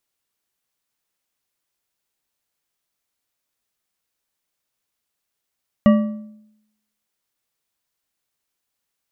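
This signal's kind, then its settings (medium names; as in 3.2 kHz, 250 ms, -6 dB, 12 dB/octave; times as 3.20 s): metal hit bar, lowest mode 214 Hz, decay 0.81 s, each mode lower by 7 dB, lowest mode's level -7 dB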